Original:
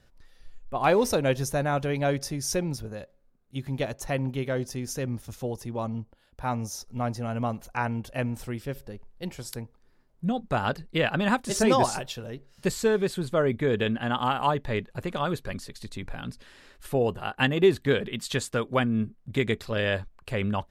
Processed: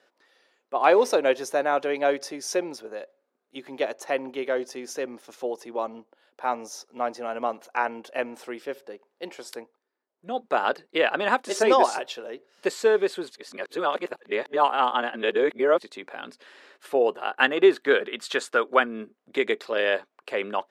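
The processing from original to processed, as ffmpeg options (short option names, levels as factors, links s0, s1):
-filter_complex "[0:a]asettb=1/sr,asplit=3[s0][s1][s2];[s0]atrim=end=17.384[s3];[s1]atrim=start=17.38:end=18.86,asetpts=PTS-STARTPTS,afade=t=in:d=0.004:c=qsin,afade=t=out:st=1.476:d=0.004:c=qsin,equalizer=f=1400:t=o:w=0.47:g=6.5[s4];[s2]atrim=start=18.856[s5];[s3][s4]acrossfade=d=0.004:c1=hsin:c2=qsin[s6];[s6][s5]acrossfade=d=0.004:c1=qsin:c2=hsin,asplit=5[s7][s8][s9][s10][s11];[s7]atrim=end=9.93,asetpts=PTS-STARTPTS,afade=t=out:st=9.62:d=0.31:c=qua:silence=0.16788[s12];[s8]atrim=start=9.93:end=10.05,asetpts=PTS-STARTPTS,volume=0.168[s13];[s9]atrim=start=10.05:end=13.312,asetpts=PTS-STARTPTS,afade=t=in:d=0.31:c=qua:silence=0.16788[s14];[s10]atrim=start=13.308:end=15.802,asetpts=PTS-STARTPTS,areverse[s15];[s11]atrim=start=15.798[s16];[s12][s13][s14]concat=n=3:v=0:a=1[s17];[s17][s15]acrossfade=d=0.004:c1=hsin:c2=hsin[s18];[s18][s16]acrossfade=d=0.004:c1=hsin:c2=hsin,highpass=f=340:w=0.5412,highpass=f=340:w=1.3066,aemphasis=mode=reproduction:type=50kf,volume=1.68"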